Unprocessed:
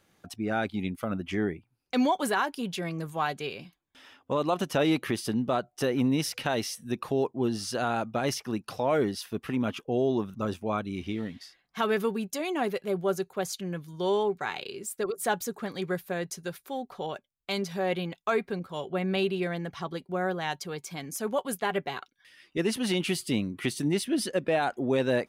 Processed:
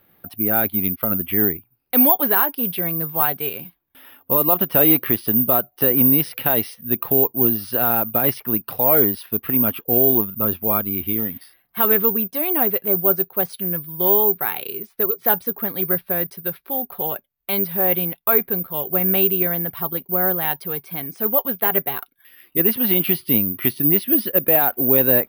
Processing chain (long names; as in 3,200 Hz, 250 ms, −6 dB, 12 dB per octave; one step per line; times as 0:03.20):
Bessel low-pass filter 2,900 Hz, order 8
bad sample-rate conversion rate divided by 3×, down filtered, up zero stuff
level +5.5 dB